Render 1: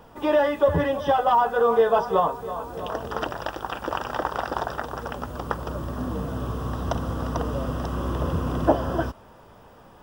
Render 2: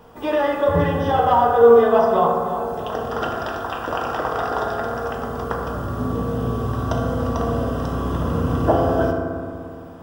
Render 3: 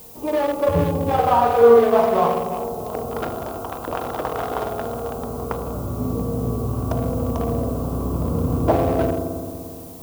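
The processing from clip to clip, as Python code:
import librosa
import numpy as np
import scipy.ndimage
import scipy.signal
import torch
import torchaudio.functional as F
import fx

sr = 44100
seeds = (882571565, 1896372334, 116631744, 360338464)

y1 = fx.rev_fdn(x, sr, rt60_s=2.1, lf_ratio=1.4, hf_ratio=0.35, size_ms=13.0, drr_db=-2.0)
y2 = fx.wiener(y1, sr, points=25)
y2 = fx.dmg_noise_colour(y2, sr, seeds[0], colour='blue', level_db=-47.0)
y2 = fx.high_shelf(y2, sr, hz=11000.0, db=5.0)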